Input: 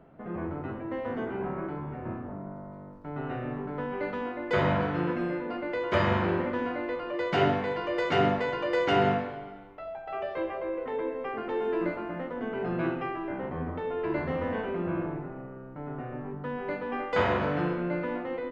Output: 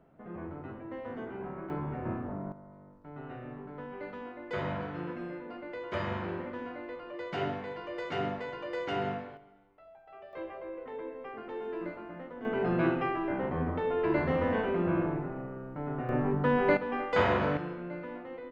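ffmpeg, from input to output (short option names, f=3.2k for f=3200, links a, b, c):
-af "asetnsamples=n=441:p=0,asendcmd='1.7 volume volume 1dB;2.52 volume volume -9dB;9.37 volume volume -16dB;10.33 volume volume -8.5dB;12.45 volume volume 2dB;16.09 volume volume 8.5dB;16.77 volume volume -0.5dB;17.57 volume volume -9dB',volume=-7dB"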